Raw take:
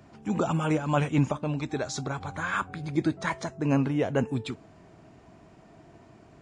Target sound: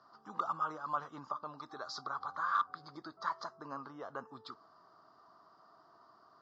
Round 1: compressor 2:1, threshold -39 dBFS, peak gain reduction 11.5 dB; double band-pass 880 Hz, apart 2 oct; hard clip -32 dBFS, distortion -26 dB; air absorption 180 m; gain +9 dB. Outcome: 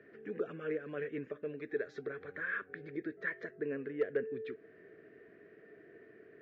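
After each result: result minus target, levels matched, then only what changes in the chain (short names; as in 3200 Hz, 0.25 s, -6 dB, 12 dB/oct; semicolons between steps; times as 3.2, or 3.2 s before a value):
1000 Hz band -17.5 dB; compressor: peak gain reduction +4 dB
change: double band-pass 2400 Hz, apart 2 oct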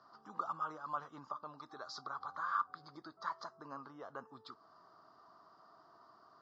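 compressor: peak gain reduction +4 dB
change: compressor 2:1, threshold -31 dBFS, peak gain reduction 7.5 dB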